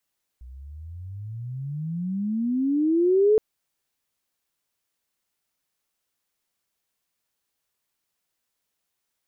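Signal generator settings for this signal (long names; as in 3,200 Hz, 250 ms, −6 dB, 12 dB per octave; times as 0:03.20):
pitch glide with a swell sine, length 2.97 s, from 60.1 Hz, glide +34.5 semitones, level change +25.5 dB, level −14 dB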